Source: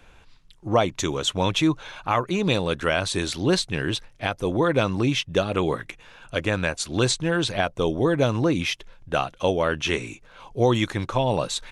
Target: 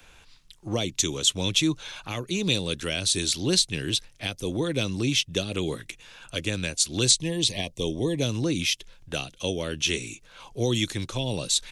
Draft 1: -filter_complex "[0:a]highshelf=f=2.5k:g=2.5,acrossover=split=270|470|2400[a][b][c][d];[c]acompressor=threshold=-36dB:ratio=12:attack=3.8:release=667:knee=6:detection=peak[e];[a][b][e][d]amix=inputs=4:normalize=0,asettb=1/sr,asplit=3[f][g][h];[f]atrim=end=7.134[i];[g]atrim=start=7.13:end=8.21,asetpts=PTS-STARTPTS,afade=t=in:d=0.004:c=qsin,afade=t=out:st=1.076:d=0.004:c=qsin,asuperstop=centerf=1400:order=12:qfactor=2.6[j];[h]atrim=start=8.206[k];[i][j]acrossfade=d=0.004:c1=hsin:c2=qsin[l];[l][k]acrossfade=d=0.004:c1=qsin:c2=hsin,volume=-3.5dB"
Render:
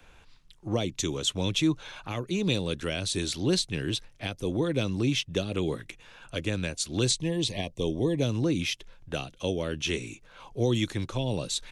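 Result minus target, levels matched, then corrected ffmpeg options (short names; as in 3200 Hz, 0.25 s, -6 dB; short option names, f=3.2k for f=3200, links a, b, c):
4000 Hz band -3.0 dB
-filter_complex "[0:a]highshelf=f=2.5k:g=12,acrossover=split=270|470|2400[a][b][c][d];[c]acompressor=threshold=-36dB:ratio=12:attack=3.8:release=667:knee=6:detection=peak[e];[a][b][e][d]amix=inputs=4:normalize=0,asettb=1/sr,asplit=3[f][g][h];[f]atrim=end=7.134[i];[g]atrim=start=7.13:end=8.21,asetpts=PTS-STARTPTS,afade=t=in:d=0.004:c=qsin,afade=t=out:st=1.076:d=0.004:c=qsin,asuperstop=centerf=1400:order=12:qfactor=2.6[j];[h]atrim=start=8.206[k];[i][j]acrossfade=d=0.004:c1=hsin:c2=qsin[l];[l][k]acrossfade=d=0.004:c1=qsin:c2=hsin,volume=-3.5dB"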